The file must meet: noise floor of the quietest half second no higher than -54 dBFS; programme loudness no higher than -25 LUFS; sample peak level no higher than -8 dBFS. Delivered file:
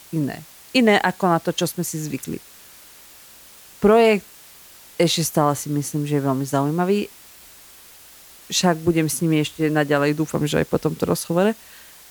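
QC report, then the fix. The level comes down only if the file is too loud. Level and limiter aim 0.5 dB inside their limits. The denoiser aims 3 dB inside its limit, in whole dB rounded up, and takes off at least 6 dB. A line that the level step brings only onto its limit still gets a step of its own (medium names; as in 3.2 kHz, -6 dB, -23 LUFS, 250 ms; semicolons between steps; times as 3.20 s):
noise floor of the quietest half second -46 dBFS: fail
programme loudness -20.5 LUFS: fail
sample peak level -4.5 dBFS: fail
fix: noise reduction 6 dB, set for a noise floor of -46 dBFS; trim -5 dB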